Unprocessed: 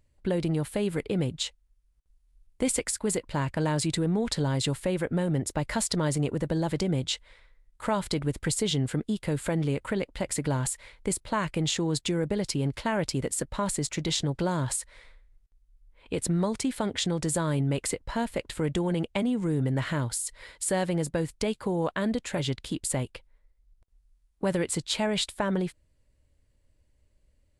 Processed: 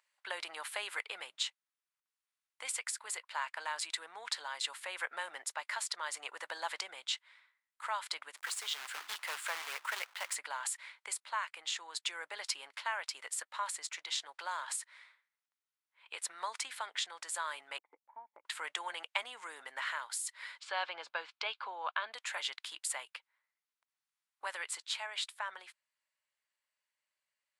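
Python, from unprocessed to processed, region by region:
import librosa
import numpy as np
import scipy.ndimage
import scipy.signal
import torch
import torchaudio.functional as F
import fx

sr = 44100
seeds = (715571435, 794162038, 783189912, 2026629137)

y = fx.chain(x, sr, fx.hum_notches(base_hz=60, count=6),
    fx.quant_companded(bits=4), at=(8.37, 10.35))
y = fx.chain(y, sr, fx.formant_cascade(vowel='u'),
    fx.high_shelf(hz=2500.0, db=10.0),
    fx.transient(attack_db=6, sustain_db=-7), at=(17.78, 18.45))
y = fx.chain(y, sr, fx.lowpass(hz=4300.0, slope=24),
    fx.notch(hz=1900.0, q=5.2), at=(20.59, 22.14))
y = scipy.signal.sosfilt(scipy.signal.butter(4, 1000.0, 'highpass', fs=sr, output='sos'), y)
y = fx.high_shelf(y, sr, hz=4400.0, db=-8.5)
y = fx.rider(y, sr, range_db=5, speed_s=0.5)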